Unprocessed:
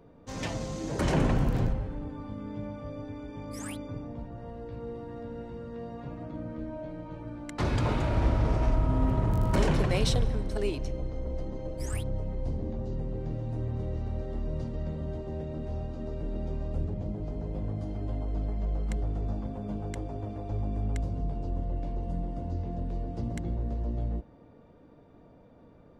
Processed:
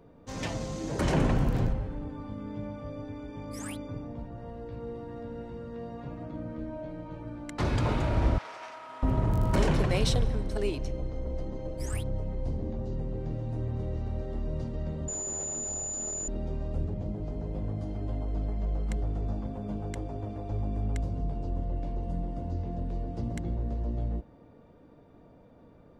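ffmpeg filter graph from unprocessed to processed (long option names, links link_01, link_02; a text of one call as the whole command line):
ffmpeg -i in.wav -filter_complex "[0:a]asettb=1/sr,asplit=3[link_01][link_02][link_03];[link_01]atrim=end=8.384[link_04];[link_02]atrim=start=8.38:end=9.03,asetpts=PTS-STARTPTS,afade=type=in:duration=0.004:curve=qsin,afade=type=out:start_time=0.646:duration=0.004:curve=qsin,highpass=1200,highshelf=frequency=7800:gain=-6[link_05];[link_03]atrim=start=9.026[link_06];[link_04][link_05]acrossfade=duration=0.004:curve1=hsin:curve2=qsin[link_07];[link_07][link_06]acrossfade=duration=0.004:curve1=qsin:curve2=hsin,asettb=1/sr,asplit=3[link_08][link_09][link_10];[link_08]atrim=end=15.084[link_11];[link_09]atrim=start=15.08:end=16.28,asetpts=PTS-STARTPTS,afade=type=in:duration=0.004:curve=qsin,afade=type=out:start_time=1.196:duration=0.004:curve=qsin,aeval=exprs='clip(val(0),-1,0.00794)':channel_layout=same,aeval=exprs='val(0)+0.00631*sin(2*PI*7000*n/s)':channel_layout=same,bass=frequency=250:gain=-8,treble=frequency=4000:gain=13[link_12];[link_10]atrim=start=16.276[link_13];[link_11][link_12]acrossfade=duration=0.004:curve1=hsin:curve2=qsin[link_14];[link_14][link_13]acrossfade=duration=0.004:curve1=qsin:curve2=hsin" out.wav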